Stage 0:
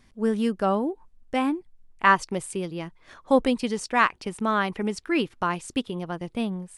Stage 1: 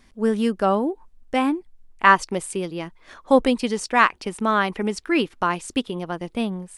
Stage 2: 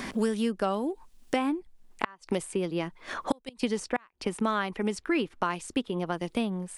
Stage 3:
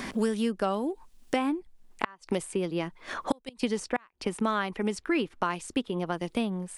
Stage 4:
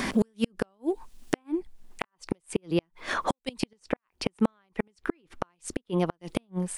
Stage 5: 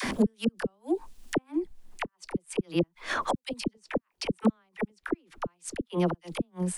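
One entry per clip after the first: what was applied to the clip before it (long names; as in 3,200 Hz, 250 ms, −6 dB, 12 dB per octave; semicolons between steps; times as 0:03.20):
parametric band 120 Hz −10 dB 0.7 octaves; level +4 dB
gate with flip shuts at −8 dBFS, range −35 dB; multiband upward and downward compressor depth 100%; level −6 dB
no processing that can be heard
gate with flip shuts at −19 dBFS, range −42 dB; level +6.5 dB
all-pass dispersion lows, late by 45 ms, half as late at 540 Hz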